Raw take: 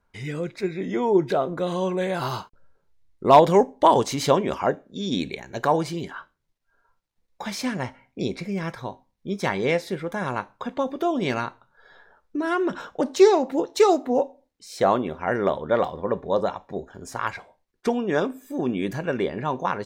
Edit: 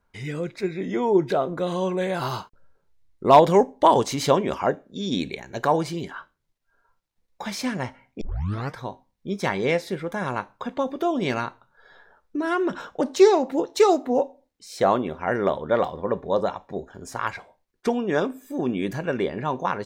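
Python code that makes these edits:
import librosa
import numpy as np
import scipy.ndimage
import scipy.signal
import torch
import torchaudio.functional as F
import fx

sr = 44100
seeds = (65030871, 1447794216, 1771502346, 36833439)

y = fx.edit(x, sr, fx.tape_start(start_s=8.21, length_s=0.55), tone=tone)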